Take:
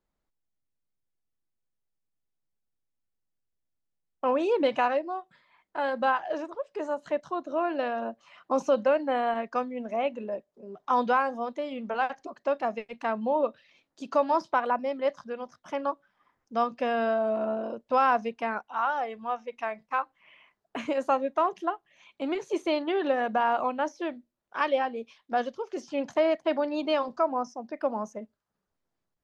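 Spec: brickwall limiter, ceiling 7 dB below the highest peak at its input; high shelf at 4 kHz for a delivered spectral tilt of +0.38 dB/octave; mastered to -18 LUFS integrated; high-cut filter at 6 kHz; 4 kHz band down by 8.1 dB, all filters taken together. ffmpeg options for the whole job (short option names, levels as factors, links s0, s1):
-af "lowpass=6000,highshelf=f=4000:g=-8,equalizer=f=4000:t=o:g=-7.5,volume=4.73,alimiter=limit=0.473:level=0:latency=1"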